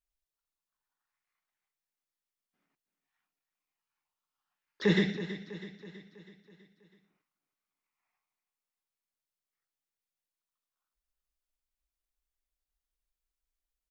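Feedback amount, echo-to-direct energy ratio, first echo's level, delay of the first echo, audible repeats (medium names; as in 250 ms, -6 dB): 54%, -11.0 dB, -12.5 dB, 325 ms, 5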